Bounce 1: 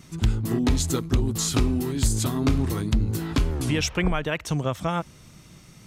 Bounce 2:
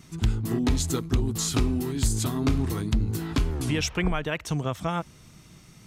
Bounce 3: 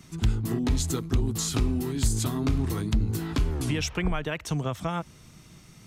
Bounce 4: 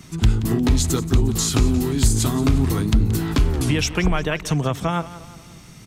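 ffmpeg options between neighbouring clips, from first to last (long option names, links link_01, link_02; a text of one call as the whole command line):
ffmpeg -i in.wav -af "bandreject=frequency=550:width=12,volume=-2dB" out.wav
ffmpeg -i in.wav -filter_complex "[0:a]acrossover=split=140[link_01][link_02];[link_02]acompressor=threshold=-26dB:ratio=3[link_03];[link_01][link_03]amix=inputs=2:normalize=0" out.wav
ffmpeg -i in.wav -af "aecho=1:1:177|354|531|708:0.168|0.0789|0.0371|0.0174,volume=7.5dB" out.wav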